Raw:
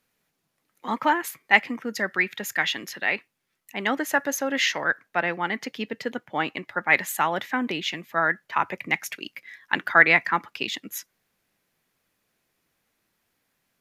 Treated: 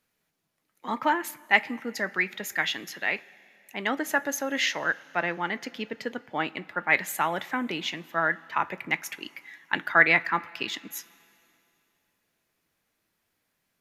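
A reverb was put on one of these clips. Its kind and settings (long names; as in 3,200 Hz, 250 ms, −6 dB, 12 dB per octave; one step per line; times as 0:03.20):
coupled-rooms reverb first 0.2 s, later 2.7 s, from −18 dB, DRR 13.5 dB
level −3 dB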